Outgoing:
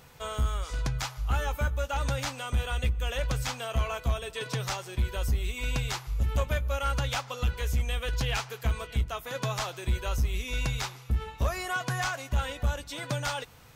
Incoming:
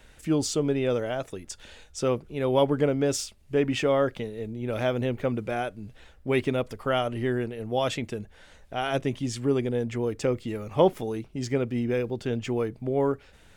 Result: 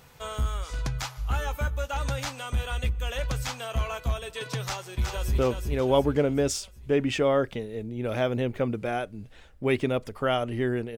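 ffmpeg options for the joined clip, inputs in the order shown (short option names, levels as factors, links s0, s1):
-filter_complex "[0:a]apad=whole_dur=10.97,atrim=end=10.97,atrim=end=5.382[s0];[1:a]atrim=start=2.018:end=7.61[s1];[s0][s1]acrossfade=d=0.004:c1=hsin:c2=hsin,asplit=2[s2][s3];[s3]afade=t=in:st=4.64:d=0.01,afade=t=out:st=5.38:d=0.01,aecho=0:1:370|740|1110|1480|1850|2220:0.595662|0.297831|0.148916|0.0744578|0.0372289|0.0186144[s4];[s2][s4]amix=inputs=2:normalize=0"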